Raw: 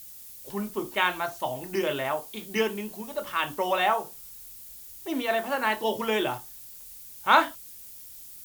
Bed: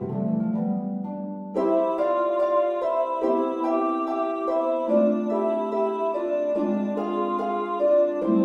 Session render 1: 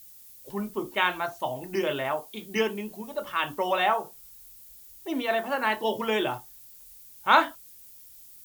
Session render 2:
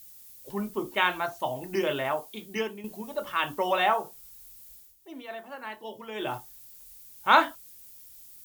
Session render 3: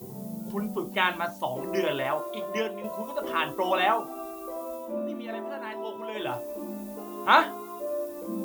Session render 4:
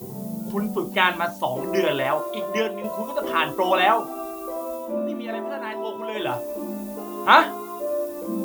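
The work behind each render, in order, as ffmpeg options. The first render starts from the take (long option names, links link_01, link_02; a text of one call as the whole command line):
ffmpeg -i in.wav -af "afftdn=noise_reduction=6:noise_floor=-45" out.wav
ffmpeg -i in.wav -filter_complex "[0:a]asplit=4[link_01][link_02][link_03][link_04];[link_01]atrim=end=2.84,asetpts=PTS-STARTPTS,afade=type=out:start_time=2.23:duration=0.61:silence=0.316228[link_05];[link_02]atrim=start=2.84:end=4.96,asetpts=PTS-STARTPTS,afade=type=in:duration=0.004:curve=hsin:silence=0.316228,afade=type=out:start_time=1.9:duration=0.22:silence=0.223872[link_06];[link_03]atrim=start=4.96:end=6.14,asetpts=PTS-STARTPTS,volume=-13dB[link_07];[link_04]atrim=start=6.14,asetpts=PTS-STARTPTS,afade=type=in:duration=0.22:silence=0.223872[link_08];[link_05][link_06][link_07][link_08]concat=n=4:v=0:a=1" out.wav
ffmpeg -i in.wav -i bed.wav -filter_complex "[1:a]volume=-12.5dB[link_01];[0:a][link_01]amix=inputs=2:normalize=0" out.wav
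ffmpeg -i in.wav -af "volume=5.5dB,alimiter=limit=-1dB:level=0:latency=1" out.wav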